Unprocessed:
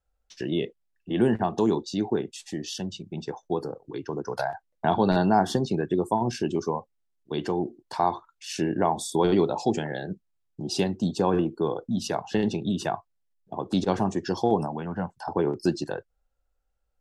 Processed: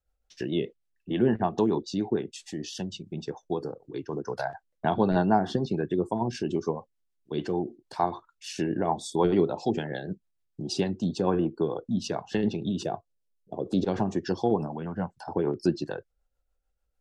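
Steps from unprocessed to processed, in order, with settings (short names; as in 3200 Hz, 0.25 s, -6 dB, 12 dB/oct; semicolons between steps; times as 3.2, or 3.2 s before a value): rotary speaker horn 6.7 Hz; treble ducked by the level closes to 2800 Hz, closed at -20 dBFS; 12.83–13.85 ten-band EQ 500 Hz +8 dB, 1000 Hz -8 dB, 2000 Hz -6 dB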